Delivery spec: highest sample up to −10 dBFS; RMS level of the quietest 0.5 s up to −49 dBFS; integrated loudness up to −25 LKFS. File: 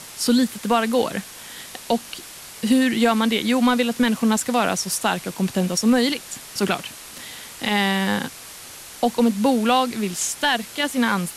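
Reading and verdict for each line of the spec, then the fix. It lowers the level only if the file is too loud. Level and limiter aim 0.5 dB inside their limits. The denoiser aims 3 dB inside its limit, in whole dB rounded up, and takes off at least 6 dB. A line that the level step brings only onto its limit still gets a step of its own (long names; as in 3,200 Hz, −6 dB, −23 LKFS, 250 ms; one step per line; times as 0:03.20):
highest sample −8.0 dBFS: out of spec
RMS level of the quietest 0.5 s −40 dBFS: out of spec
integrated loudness −21.0 LKFS: out of spec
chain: broadband denoise 8 dB, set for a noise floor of −40 dBFS
level −4.5 dB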